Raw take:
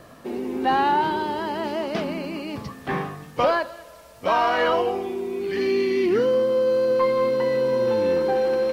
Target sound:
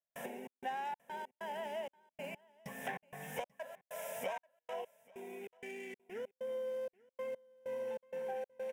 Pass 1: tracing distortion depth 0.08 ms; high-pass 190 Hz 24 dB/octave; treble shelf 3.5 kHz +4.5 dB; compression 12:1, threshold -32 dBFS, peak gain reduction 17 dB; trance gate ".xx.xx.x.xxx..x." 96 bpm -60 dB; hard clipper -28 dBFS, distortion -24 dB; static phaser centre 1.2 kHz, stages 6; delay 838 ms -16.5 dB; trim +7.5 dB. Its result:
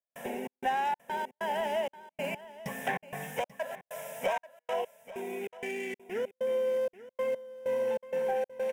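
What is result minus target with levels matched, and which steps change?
compression: peak gain reduction -10 dB; echo-to-direct +8 dB
change: compression 12:1, threshold -43 dBFS, peak gain reduction 27.5 dB; change: delay 838 ms -24.5 dB

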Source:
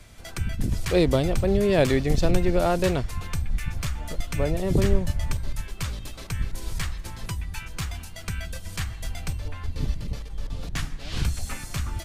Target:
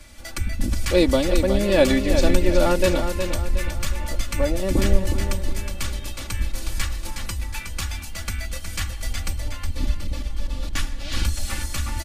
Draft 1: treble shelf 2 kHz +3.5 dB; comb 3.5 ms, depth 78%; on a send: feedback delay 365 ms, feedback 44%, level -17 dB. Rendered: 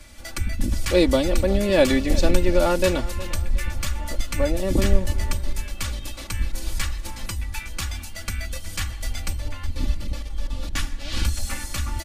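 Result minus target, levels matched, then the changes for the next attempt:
echo-to-direct -9.5 dB
change: feedback delay 365 ms, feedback 44%, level -7.5 dB

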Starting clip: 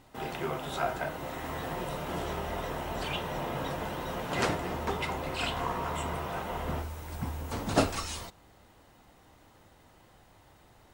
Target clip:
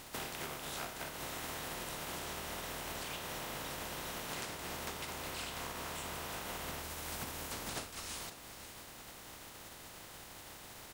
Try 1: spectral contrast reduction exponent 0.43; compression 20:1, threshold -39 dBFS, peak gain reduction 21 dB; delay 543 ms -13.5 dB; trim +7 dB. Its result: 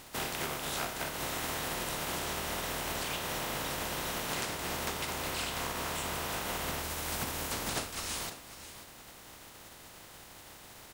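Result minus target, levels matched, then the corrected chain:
compression: peak gain reduction -6.5 dB
spectral contrast reduction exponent 0.43; compression 20:1, threshold -46 dBFS, peak gain reduction 27.5 dB; delay 543 ms -13.5 dB; trim +7 dB

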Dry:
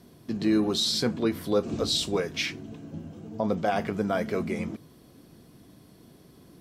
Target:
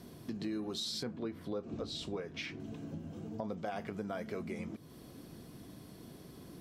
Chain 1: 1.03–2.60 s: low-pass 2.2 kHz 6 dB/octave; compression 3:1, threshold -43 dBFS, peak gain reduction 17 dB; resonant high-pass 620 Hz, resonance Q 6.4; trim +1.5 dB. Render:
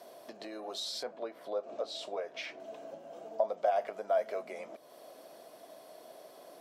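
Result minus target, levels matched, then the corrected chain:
500 Hz band +4.0 dB
1.03–2.60 s: low-pass 2.2 kHz 6 dB/octave; compression 3:1, threshold -43 dBFS, peak gain reduction 17 dB; trim +1.5 dB

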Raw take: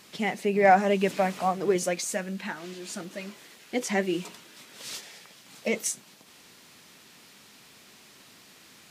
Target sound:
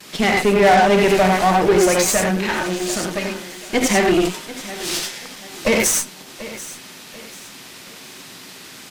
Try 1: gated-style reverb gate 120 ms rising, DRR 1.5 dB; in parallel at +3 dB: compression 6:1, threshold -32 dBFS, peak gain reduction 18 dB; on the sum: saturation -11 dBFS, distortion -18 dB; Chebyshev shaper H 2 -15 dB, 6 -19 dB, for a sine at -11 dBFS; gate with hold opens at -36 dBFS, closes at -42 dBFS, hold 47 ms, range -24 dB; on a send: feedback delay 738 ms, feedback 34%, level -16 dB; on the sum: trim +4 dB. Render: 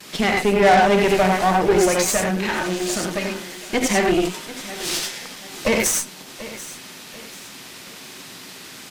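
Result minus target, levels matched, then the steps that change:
compression: peak gain reduction +8 dB
change: compression 6:1, threshold -22.5 dBFS, peak gain reduction 10.5 dB

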